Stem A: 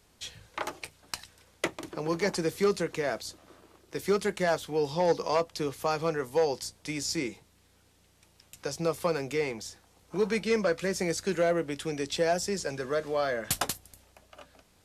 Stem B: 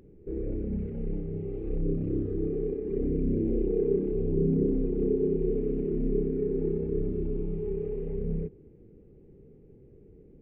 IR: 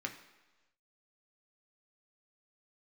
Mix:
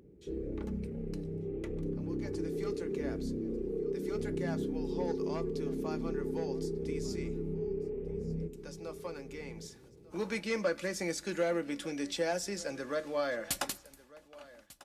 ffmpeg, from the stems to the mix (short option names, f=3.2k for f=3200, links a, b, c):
-filter_complex "[0:a]agate=range=-12dB:threshold=-59dB:ratio=16:detection=peak,aecho=1:1:3.5:0.38,volume=-7dB,afade=t=in:st=2.19:d=0.45:silence=0.446684,afade=t=in:st=9.48:d=0.36:silence=0.334965,asplit=3[a][b][c];[b]volume=-10dB[d];[c]volume=-19dB[e];[1:a]highpass=49,acompressor=threshold=-29dB:ratio=6,volume=-3dB,asplit=2[f][g];[g]volume=-10.5dB[h];[2:a]atrim=start_sample=2205[i];[d][i]afir=irnorm=-1:irlink=0[j];[e][h]amix=inputs=2:normalize=0,aecho=0:1:1195:1[k];[a][f][j][k]amix=inputs=4:normalize=0,equalizer=f=89:t=o:w=0.3:g=-7"